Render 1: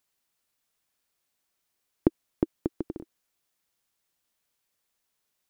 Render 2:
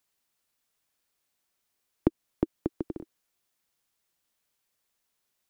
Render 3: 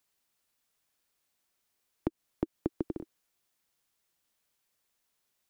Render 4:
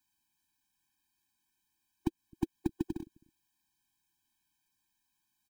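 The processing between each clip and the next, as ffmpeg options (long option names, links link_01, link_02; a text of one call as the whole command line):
ffmpeg -i in.wav -filter_complex "[0:a]acrossover=split=330[link_01][link_02];[link_02]acompressor=threshold=-31dB:ratio=2[link_03];[link_01][link_03]amix=inputs=2:normalize=0" out.wav
ffmpeg -i in.wav -af "alimiter=limit=-15.5dB:level=0:latency=1:release=129" out.wav
ffmpeg -i in.wav -filter_complex "[0:a]acrossover=split=290[link_01][link_02];[link_01]aecho=1:1:261:0.0794[link_03];[link_02]acrusher=bits=3:mode=log:mix=0:aa=0.000001[link_04];[link_03][link_04]amix=inputs=2:normalize=0,afftfilt=real='re*eq(mod(floor(b*sr/1024/370),2),0)':imag='im*eq(mod(floor(b*sr/1024/370),2),0)':win_size=1024:overlap=0.75,volume=1dB" out.wav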